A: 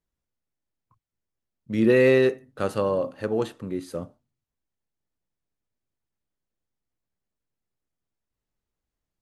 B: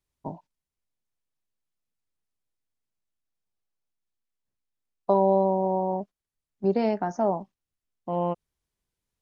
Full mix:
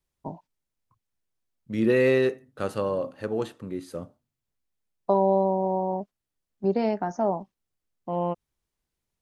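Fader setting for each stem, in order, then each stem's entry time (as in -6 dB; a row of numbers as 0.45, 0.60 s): -3.0, -0.5 dB; 0.00, 0.00 s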